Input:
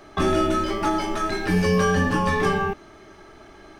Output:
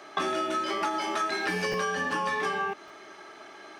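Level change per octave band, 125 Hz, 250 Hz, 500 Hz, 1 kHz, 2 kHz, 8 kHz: −19.0, −13.0, −8.5, −4.0, −3.0, −4.5 decibels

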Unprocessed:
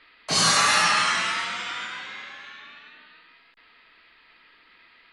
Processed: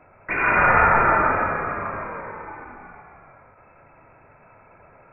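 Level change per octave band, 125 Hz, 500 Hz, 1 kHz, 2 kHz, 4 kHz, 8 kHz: +7.5 dB, +11.0 dB, +6.0 dB, +4.0 dB, below −30 dB, below −40 dB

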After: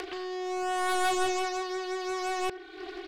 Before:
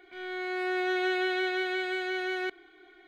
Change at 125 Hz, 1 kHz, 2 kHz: can't be measured, +6.0 dB, −5.0 dB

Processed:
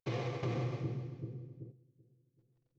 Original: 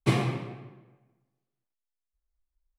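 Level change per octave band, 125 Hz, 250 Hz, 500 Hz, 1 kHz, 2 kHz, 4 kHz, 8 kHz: −5.5 dB, −8.5 dB, −4.5 dB, −8.5 dB, −10.5 dB, −10.5 dB, can't be measured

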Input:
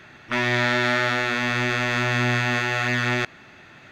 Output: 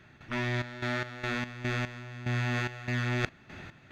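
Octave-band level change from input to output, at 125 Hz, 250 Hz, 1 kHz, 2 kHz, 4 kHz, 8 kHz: −5.0, −8.0, −13.0, −13.0, −13.0, −13.0 decibels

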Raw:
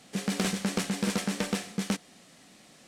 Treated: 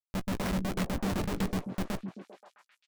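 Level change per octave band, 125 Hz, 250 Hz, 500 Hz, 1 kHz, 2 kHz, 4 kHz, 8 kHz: +0.5, −2.0, −1.0, 0.0, −4.5, −7.5, −10.0 decibels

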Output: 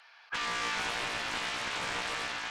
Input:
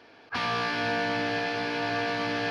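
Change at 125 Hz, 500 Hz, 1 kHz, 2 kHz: −12.0, −12.5, −5.5, −4.0 decibels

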